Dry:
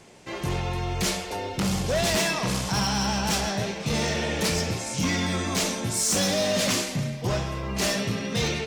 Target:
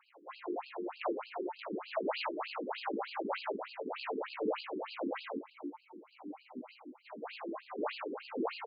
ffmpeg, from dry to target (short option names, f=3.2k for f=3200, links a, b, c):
-filter_complex "[0:a]asplit=3[a][b][c];[a]afade=t=out:st=5.36:d=0.02[d];[b]asplit=3[e][f][g];[e]bandpass=f=300:t=q:w=8,volume=0dB[h];[f]bandpass=f=870:t=q:w=8,volume=-6dB[i];[g]bandpass=f=2.24k:t=q:w=8,volume=-9dB[j];[h][i][j]amix=inputs=3:normalize=0,afade=t=in:st=5.36:d=0.02,afade=t=out:st=7.04:d=0.02[k];[c]afade=t=in:st=7.04:d=0.02[l];[d][k][l]amix=inputs=3:normalize=0,bandreject=f=94.32:t=h:w=4,bandreject=f=188.64:t=h:w=4,bandreject=f=282.96:t=h:w=4,bandreject=f=377.28:t=h:w=4,bandreject=f=471.6:t=h:w=4,bandreject=f=565.92:t=h:w=4,bandreject=f=660.24:t=h:w=4,bandreject=f=754.56:t=h:w=4,bandreject=f=848.88:t=h:w=4,bandreject=f=943.2:t=h:w=4,bandreject=f=1.03752k:t=h:w=4,bandreject=f=1.13184k:t=h:w=4,bandreject=f=1.22616k:t=h:w=4,acrossover=split=1500[m][n];[m]volume=29dB,asoftclip=hard,volume=-29dB[o];[n]acrusher=samples=25:mix=1:aa=0.000001[p];[o][p]amix=inputs=2:normalize=0,flanger=delay=15.5:depth=2.2:speed=0.47,asplit=2[q][r];[r]aecho=0:1:175:0.133[s];[q][s]amix=inputs=2:normalize=0,afftfilt=real='re*between(b*sr/1024,300*pow(3600/300,0.5+0.5*sin(2*PI*3.3*pts/sr))/1.41,300*pow(3600/300,0.5+0.5*sin(2*PI*3.3*pts/sr))*1.41)':imag='im*between(b*sr/1024,300*pow(3600/300,0.5+0.5*sin(2*PI*3.3*pts/sr))/1.41,300*pow(3600/300,0.5+0.5*sin(2*PI*3.3*pts/sr))*1.41)':win_size=1024:overlap=0.75,volume=3dB"